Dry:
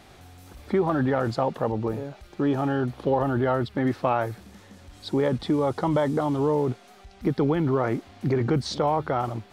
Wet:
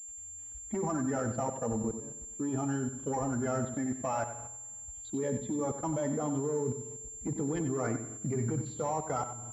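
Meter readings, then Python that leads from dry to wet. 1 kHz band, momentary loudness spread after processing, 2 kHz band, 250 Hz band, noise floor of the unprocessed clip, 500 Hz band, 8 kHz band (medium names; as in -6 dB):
-9.0 dB, 9 LU, -10.5 dB, -8.0 dB, -51 dBFS, -9.5 dB, no reading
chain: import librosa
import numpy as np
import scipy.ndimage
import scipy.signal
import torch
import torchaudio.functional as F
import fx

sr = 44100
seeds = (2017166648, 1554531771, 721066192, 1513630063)

p1 = fx.bin_expand(x, sr, power=1.5)
p2 = fx.dynamic_eq(p1, sr, hz=210.0, q=2.0, threshold_db=-43.0, ratio=4.0, max_db=7)
p3 = 10.0 ** (-16.0 / 20.0) * np.tanh(p2 / 10.0 ** (-16.0 / 20.0))
p4 = fx.notch_comb(p3, sr, f0_hz=180.0)
p5 = fx.rev_spring(p4, sr, rt60_s=1.3, pass_ms=(51,), chirp_ms=25, drr_db=11.5)
p6 = fx.level_steps(p5, sr, step_db=16)
p7 = p6 + fx.echo_feedback(p6, sr, ms=93, feedback_pct=25, wet_db=-10, dry=0)
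y = fx.pwm(p7, sr, carrier_hz=7300.0)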